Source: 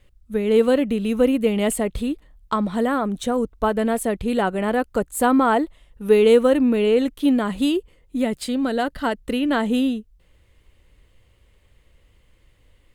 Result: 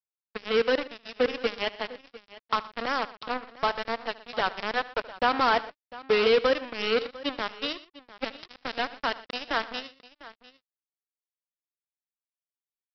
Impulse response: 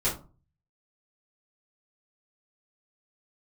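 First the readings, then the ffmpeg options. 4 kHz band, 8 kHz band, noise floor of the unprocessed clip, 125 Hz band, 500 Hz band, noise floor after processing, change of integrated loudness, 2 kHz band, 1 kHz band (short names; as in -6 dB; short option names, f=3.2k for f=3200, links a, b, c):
+1.0 dB, under -20 dB, -59 dBFS, n/a, -8.5 dB, under -85 dBFS, -7.5 dB, -0.5 dB, -4.0 dB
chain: -af "highpass=f=1.1k:p=1,aresample=11025,acrusher=bits=3:mix=0:aa=0.5,aresample=44100,aecho=1:1:75|120|700:0.112|0.106|0.119"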